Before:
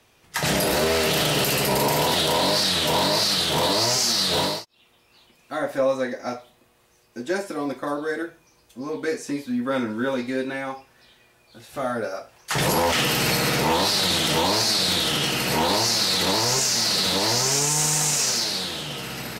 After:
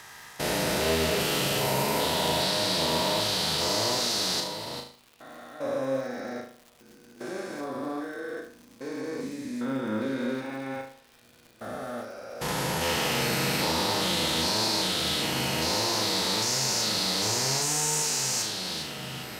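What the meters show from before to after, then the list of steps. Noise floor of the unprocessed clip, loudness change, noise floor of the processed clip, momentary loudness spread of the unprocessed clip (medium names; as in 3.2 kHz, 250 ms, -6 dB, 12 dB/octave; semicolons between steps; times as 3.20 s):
-60 dBFS, -5.5 dB, -56 dBFS, 12 LU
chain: spectrogram pixelated in time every 400 ms; flutter echo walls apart 6.4 m, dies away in 0.48 s; crackle 230 per s -37 dBFS; trim -5 dB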